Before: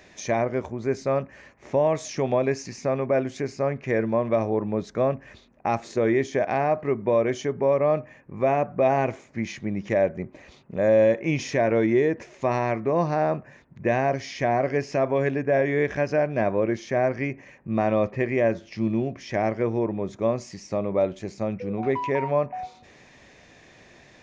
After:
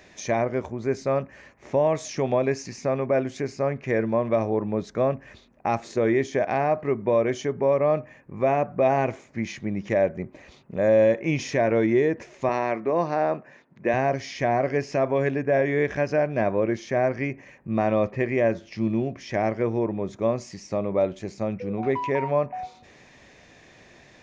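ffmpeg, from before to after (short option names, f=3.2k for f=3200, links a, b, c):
-filter_complex "[0:a]asettb=1/sr,asplit=3[a][b][c];[a]atrim=end=12.494[d];[b]atrim=start=12.49:end=13.94,asetpts=PTS-STARTPTS,afade=t=in:d=0.004:c=qsin,afade=t=out:st=1.446:d=0.004:c=qsin,highpass=220,lowpass=6.4k[e];[c]atrim=start=13.936[f];[d][e]acrossfade=d=0.004:c1=hsin:c2=qsin[g];[g][f]acrossfade=d=0.004:c1=qsin:c2=hsin"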